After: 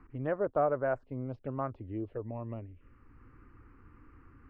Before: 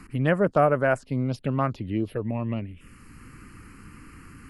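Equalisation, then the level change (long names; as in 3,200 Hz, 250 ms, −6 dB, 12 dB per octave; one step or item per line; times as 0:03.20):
low-pass filter 1,100 Hz 12 dB per octave
parametric band 180 Hz −13.5 dB 0.8 octaves
−6.5 dB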